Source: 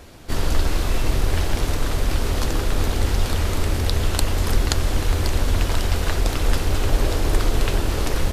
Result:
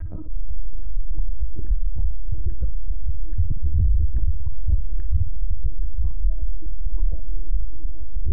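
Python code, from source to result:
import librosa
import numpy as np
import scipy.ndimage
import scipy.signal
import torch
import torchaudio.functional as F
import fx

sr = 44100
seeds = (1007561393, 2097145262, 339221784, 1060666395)

y = fx.spec_expand(x, sr, power=3.3)
y = fx.lpc_vocoder(y, sr, seeds[0], excitation='pitch_kept', order=10)
y = fx.peak_eq(y, sr, hz=1800.0, db=-9.5, octaves=2.1, at=(2.75, 4.79))
y = fx.filter_lfo_lowpass(y, sr, shape='saw_down', hz=1.2, low_hz=360.0, high_hz=1700.0, q=7.5)
y = fx.room_flutter(y, sr, wall_m=9.8, rt60_s=0.33)
y = fx.env_flatten(y, sr, amount_pct=50)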